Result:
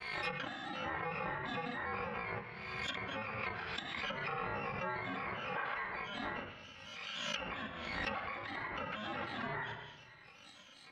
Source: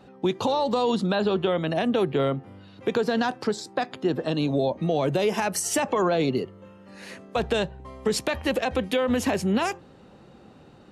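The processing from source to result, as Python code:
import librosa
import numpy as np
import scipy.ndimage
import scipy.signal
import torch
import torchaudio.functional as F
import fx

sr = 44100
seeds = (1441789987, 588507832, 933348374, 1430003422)

p1 = fx.bit_reversed(x, sr, seeds[0], block=128)
p2 = scipy.signal.sosfilt(scipy.signal.butter(4, 2900.0, 'lowpass', fs=sr, output='sos'), p1)
p3 = fx.tilt_eq(p2, sr, slope=4.5)
p4 = fx.granulator(p3, sr, seeds[1], grain_ms=205.0, per_s=10.0, spray_ms=12.0, spread_st=7)
p5 = fx.room_shoebox(p4, sr, seeds[2], volume_m3=2300.0, walls='furnished', distance_m=2.2)
p6 = fx.over_compress(p5, sr, threshold_db=-36.0, ratio=-0.5)
p7 = p5 + F.gain(torch.from_numpy(p6), 0.5).numpy()
p8 = fx.peak_eq(p7, sr, hz=110.0, db=-7.0, octaves=2.2)
p9 = fx.env_lowpass_down(p8, sr, base_hz=1300.0, full_db=-28.0)
p10 = fx.pre_swell(p9, sr, db_per_s=32.0)
y = F.gain(torch.from_numpy(p10), -5.0).numpy()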